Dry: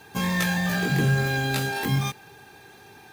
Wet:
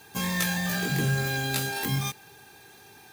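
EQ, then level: high shelf 4300 Hz +9.5 dB; -4.5 dB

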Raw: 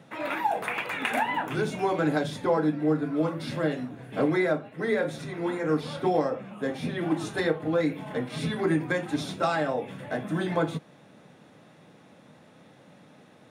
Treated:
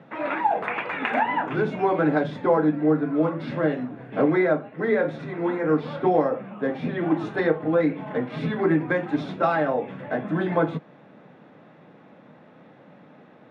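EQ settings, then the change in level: BPF 140–2100 Hz; +4.5 dB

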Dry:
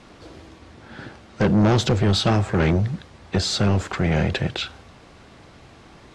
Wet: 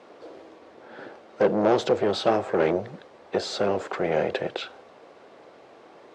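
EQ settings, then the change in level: band-pass 490 Hz, Q 1.8; tilt +3.5 dB/oct; +8.0 dB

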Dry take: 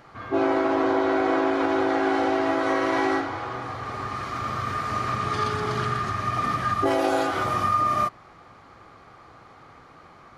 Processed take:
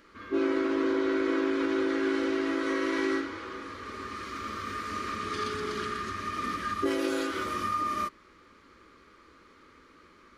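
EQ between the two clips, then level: fixed phaser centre 310 Hz, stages 4; -2.5 dB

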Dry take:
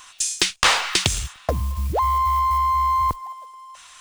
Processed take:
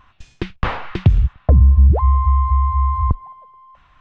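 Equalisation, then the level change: tone controls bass +9 dB, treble -8 dB; tape spacing loss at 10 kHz 40 dB; low shelf 390 Hz +7.5 dB; -1.0 dB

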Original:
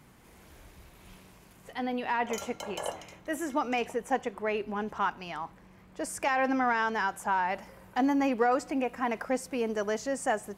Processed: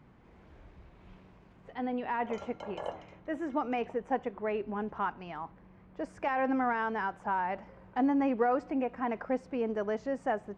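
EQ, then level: tape spacing loss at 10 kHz 33 dB; 0.0 dB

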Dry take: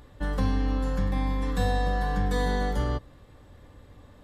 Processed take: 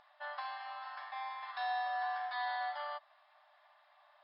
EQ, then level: brick-wall FIR band-pass 590–5300 Hz; high shelf 3800 Hz -8.5 dB; -3.0 dB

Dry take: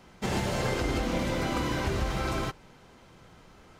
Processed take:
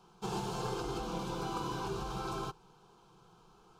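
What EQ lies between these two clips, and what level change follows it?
low shelf 330 Hz -5.5 dB; high shelf 5300 Hz -7.5 dB; fixed phaser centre 390 Hz, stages 8; -2.0 dB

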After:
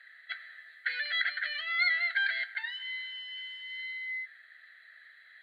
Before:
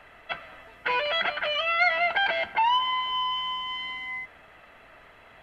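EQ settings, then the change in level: double band-pass 2700 Hz, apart 1.2 oct; tilt +4 dB/oct; fixed phaser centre 2400 Hz, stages 4; +4.0 dB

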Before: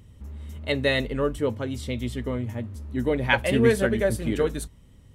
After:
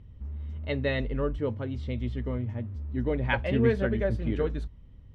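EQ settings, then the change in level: air absorption 230 m; low shelf 89 Hz +11.5 dB; -5.0 dB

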